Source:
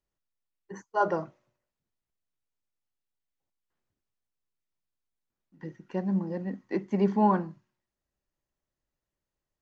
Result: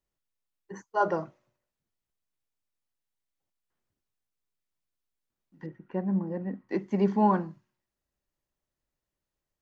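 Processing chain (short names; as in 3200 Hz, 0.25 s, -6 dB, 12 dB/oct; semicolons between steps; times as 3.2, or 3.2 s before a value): 5.66–6.69 LPF 2000 Hz 12 dB/oct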